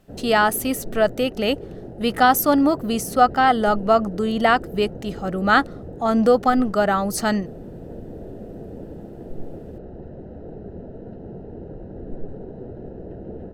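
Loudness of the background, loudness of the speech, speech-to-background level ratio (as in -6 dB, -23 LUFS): -37.0 LUFS, -20.0 LUFS, 17.0 dB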